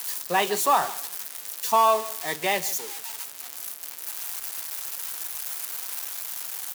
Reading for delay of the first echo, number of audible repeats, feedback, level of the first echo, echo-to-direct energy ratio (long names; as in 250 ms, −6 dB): 155 ms, 2, 22%, −17.5 dB, −17.5 dB